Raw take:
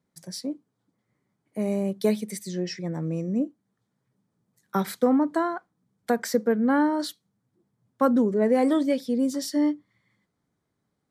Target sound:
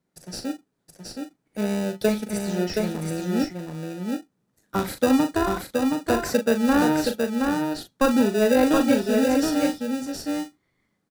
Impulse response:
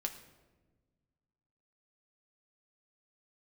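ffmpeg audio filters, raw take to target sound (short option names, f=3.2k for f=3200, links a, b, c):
-filter_complex "[0:a]highpass=f=230:p=1,asplit=2[a][b];[b]acrusher=samples=41:mix=1:aa=0.000001,volume=-3.5dB[c];[a][c]amix=inputs=2:normalize=0,asplit=2[d][e];[e]adelay=39,volume=-8dB[f];[d][f]amix=inputs=2:normalize=0,aecho=1:1:722:0.631"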